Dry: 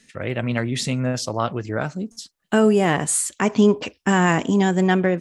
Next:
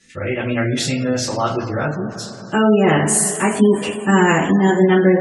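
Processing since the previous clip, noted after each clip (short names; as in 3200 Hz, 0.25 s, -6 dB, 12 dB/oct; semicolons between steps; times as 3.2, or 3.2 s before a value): two-slope reverb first 0.29 s, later 3.5 s, from -18 dB, DRR -9 dB; spectral gate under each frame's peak -30 dB strong; gain -4.5 dB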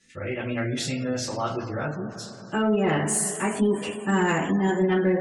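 soft clip -3.5 dBFS, distortion -24 dB; gain -8 dB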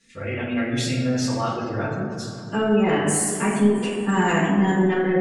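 shoebox room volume 1100 m³, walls mixed, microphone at 1.7 m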